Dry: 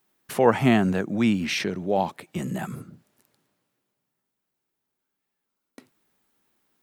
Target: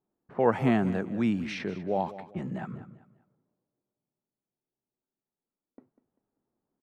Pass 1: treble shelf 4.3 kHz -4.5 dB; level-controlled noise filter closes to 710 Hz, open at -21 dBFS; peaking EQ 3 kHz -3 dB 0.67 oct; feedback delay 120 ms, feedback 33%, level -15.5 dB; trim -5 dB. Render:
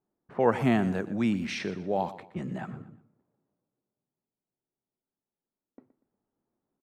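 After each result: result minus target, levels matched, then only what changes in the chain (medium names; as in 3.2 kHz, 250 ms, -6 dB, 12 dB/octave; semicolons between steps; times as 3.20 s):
echo 76 ms early; 8 kHz band +6.0 dB
change: feedback delay 196 ms, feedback 33%, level -15.5 dB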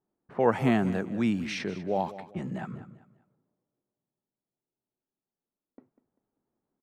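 8 kHz band +6.0 dB
change: treble shelf 4.3 kHz -12 dB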